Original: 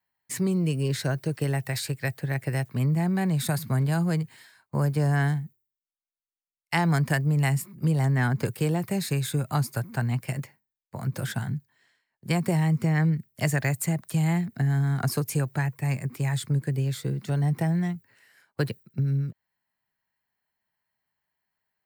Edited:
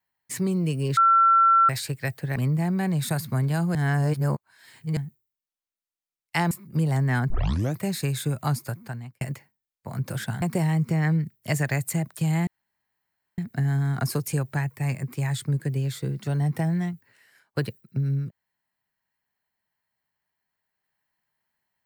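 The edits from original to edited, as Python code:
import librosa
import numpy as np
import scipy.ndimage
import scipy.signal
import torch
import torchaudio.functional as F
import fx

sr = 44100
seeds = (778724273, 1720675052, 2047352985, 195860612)

y = fx.edit(x, sr, fx.bleep(start_s=0.97, length_s=0.72, hz=1350.0, db=-14.0),
    fx.cut(start_s=2.36, length_s=0.38),
    fx.reverse_span(start_s=4.13, length_s=1.22),
    fx.cut(start_s=6.89, length_s=0.7),
    fx.tape_start(start_s=8.38, length_s=0.48),
    fx.fade_out_span(start_s=9.62, length_s=0.67),
    fx.cut(start_s=11.5, length_s=0.85),
    fx.insert_room_tone(at_s=14.4, length_s=0.91), tone=tone)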